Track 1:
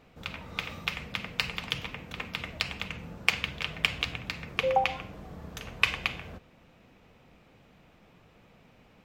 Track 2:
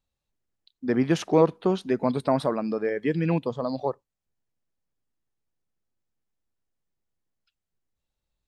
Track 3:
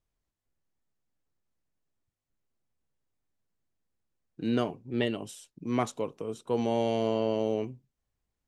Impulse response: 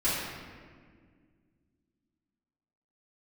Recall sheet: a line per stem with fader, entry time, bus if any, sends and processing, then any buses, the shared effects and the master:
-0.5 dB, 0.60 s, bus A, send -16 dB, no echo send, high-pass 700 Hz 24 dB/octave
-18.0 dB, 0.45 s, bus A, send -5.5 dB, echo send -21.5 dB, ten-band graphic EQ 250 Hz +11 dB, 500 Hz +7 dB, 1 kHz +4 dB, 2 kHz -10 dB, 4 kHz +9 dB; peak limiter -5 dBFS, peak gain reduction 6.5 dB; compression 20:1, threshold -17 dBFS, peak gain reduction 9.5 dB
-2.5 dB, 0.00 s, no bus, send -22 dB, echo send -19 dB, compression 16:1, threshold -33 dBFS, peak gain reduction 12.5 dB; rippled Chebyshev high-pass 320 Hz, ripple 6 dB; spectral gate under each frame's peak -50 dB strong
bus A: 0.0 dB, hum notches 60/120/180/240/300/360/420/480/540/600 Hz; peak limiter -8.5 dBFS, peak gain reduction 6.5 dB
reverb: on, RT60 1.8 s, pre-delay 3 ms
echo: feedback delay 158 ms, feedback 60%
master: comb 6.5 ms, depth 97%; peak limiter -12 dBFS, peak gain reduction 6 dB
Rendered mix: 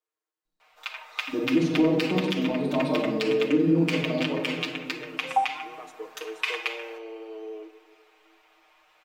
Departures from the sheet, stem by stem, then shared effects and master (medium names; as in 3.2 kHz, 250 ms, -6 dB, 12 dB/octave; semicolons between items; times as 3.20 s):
stem 1: send -16 dB -> -23 dB; stem 2: missing compression 20:1, threshold -17 dBFS, peak gain reduction 9.5 dB